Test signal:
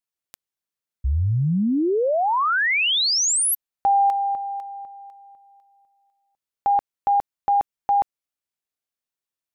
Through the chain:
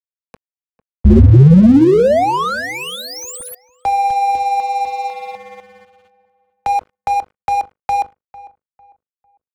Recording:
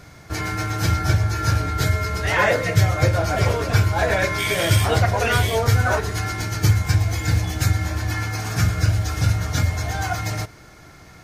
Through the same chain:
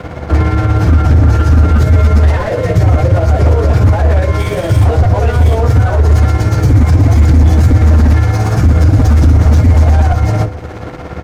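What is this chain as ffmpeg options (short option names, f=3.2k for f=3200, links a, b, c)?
-filter_complex "[0:a]equalizer=f=74:t=o:w=0.22:g=14,bandreject=f=50:t=h:w=6,bandreject=f=100:t=h:w=6,bandreject=f=150:t=h:w=6,bandreject=f=200:t=h:w=6,bandreject=f=250:t=h:w=6,bandreject=f=300:t=h:w=6,bandreject=f=350:t=h:w=6,bandreject=f=400:t=h:w=6,bandreject=f=450:t=h:w=6,asplit=2[a][b];[b]highpass=f=720:p=1,volume=18dB,asoftclip=type=tanh:threshold=-2.5dB[c];[a][c]amix=inputs=2:normalize=0,lowpass=f=1.2k:p=1,volume=-6dB,acrossover=split=250|740|5100[d][e][f][g];[g]dynaudnorm=f=160:g=13:m=12dB[h];[d][e][f][h]amix=inputs=4:normalize=0,alimiter=limit=-12dB:level=0:latency=1:release=291,acrossover=split=120[i][j];[j]acompressor=threshold=-26dB:ratio=4:attack=2.7:release=943:knee=2.83:detection=peak[k];[i][k]amix=inputs=2:normalize=0,tremolo=f=17:d=0.46,aeval=exprs='val(0)+0.00282*sin(2*PI*500*n/s)':c=same,aeval=exprs='0.266*sin(PI/2*3.98*val(0)/0.266)':c=same,tiltshelf=f=930:g=10,aeval=exprs='sgn(val(0))*max(abs(val(0))-0.0398,0)':c=same,asplit=2[l][m];[m]adelay=450,lowpass=f=1.8k:p=1,volume=-18.5dB,asplit=2[n][o];[o]adelay=450,lowpass=f=1.8k:p=1,volume=0.3,asplit=2[p][q];[q]adelay=450,lowpass=f=1.8k:p=1,volume=0.3[r];[l][n][p][r]amix=inputs=4:normalize=0"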